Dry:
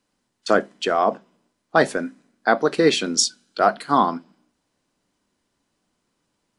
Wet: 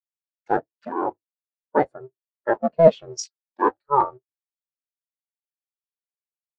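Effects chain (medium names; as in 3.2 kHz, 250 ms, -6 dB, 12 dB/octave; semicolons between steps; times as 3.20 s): cycle switcher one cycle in 2, inverted; spectral contrast expander 2.5:1; trim +1.5 dB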